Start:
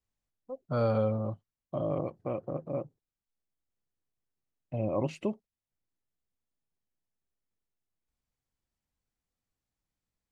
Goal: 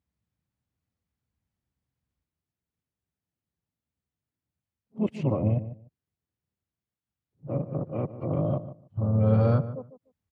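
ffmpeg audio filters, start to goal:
-filter_complex "[0:a]areverse,highpass=f=64:w=0.5412,highpass=f=64:w=1.3066,bass=f=250:g=10,treble=f=4000:g=-7,asplit=3[s0][s1][s2];[s1]asetrate=37084,aresample=44100,atempo=1.18921,volume=0.282[s3];[s2]asetrate=52444,aresample=44100,atempo=0.840896,volume=0.158[s4];[s0][s3][s4]amix=inputs=3:normalize=0,asplit=2[s5][s6];[s6]adelay=148,lowpass=f=1300:p=1,volume=0.237,asplit=2[s7][s8];[s8]adelay=148,lowpass=f=1300:p=1,volume=0.18[s9];[s7][s9]amix=inputs=2:normalize=0[s10];[s5][s10]amix=inputs=2:normalize=0"

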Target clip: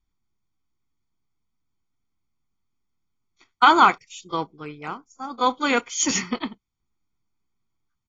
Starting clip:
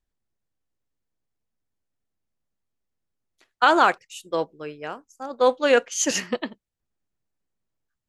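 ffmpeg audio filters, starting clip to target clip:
-af "aecho=1:1:0.9:0.81" -ar 32000 -c:a aac -b:a 24k

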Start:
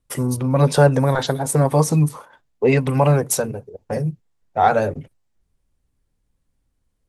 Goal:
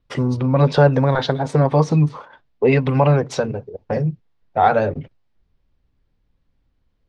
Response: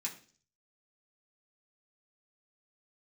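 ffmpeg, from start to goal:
-filter_complex "[0:a]lowpass=f=4600:w=0.5412,lowpass=f=4600:w=1.3066,asplit=2[s0][s1];[s1]acompressor=threshold=0.0631:ratio=6,volume=0.794[s2];[s0][s2]amix=inputs=2:normalize=0,volume=0.891"

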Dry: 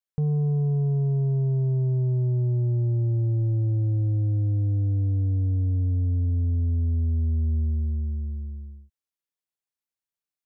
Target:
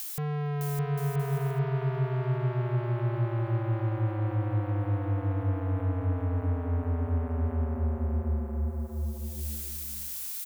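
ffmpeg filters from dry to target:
-filter_complex "[0:a]acompressor=mode=upward:threshold=0.0126:ratio=2.5,crystalizer=i=7:c=0,asoftclip=type=tanh:threshold=0.0168,asplit=2[s0][s1];[s1]aecho=0:1:610|976|1196|1327|1406:0.631|0.398|0.251|0.158|0.1[s2];[s0][s2]amix=inputs=2:normalize=0,volume=1.88"

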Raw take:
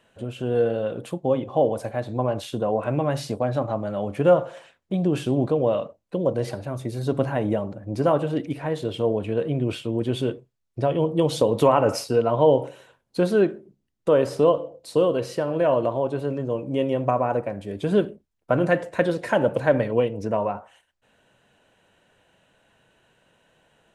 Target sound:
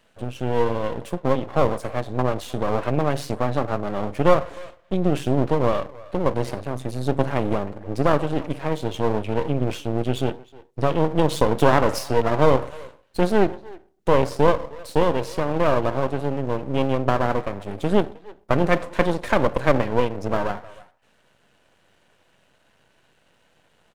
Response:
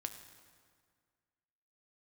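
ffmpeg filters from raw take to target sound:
-filter_complex "[0:a]asplit=2[s0][s1];[s1]adelay=310,highpass=300,lowpass=3400,asoftclip=type=hard:threshold=0.178,volume=0.112[s2];[s0][s2]amix=inputs=2:normalize=0,aeval=exprs='max(val(0),0)':c=same,volume=1.68"

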